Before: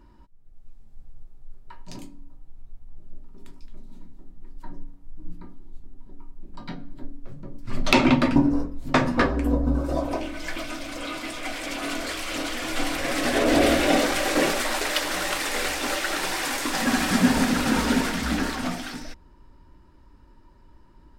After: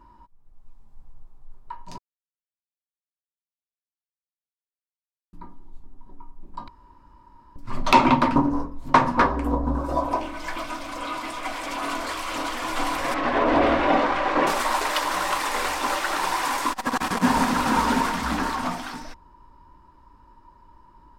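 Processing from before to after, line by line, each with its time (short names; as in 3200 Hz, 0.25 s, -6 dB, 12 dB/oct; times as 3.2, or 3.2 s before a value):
1.98–5.33 mute
6.68–7.56 room tone
8.22–9.84 Doppler distortion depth 0.32 ms
13.14–14.47 LPF 2800 Hz
16.71–17.23 core saturation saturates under 430 Hz
whole clip: bell 1000 Hz +14.5 dB 0.63 oct; gain -2.5 dB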